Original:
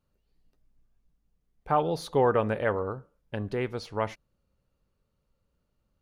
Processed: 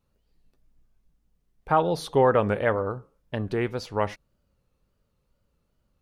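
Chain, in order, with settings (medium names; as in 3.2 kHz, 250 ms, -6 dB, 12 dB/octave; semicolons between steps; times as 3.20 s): wow and flutter 100 cents; trim +3.5 dB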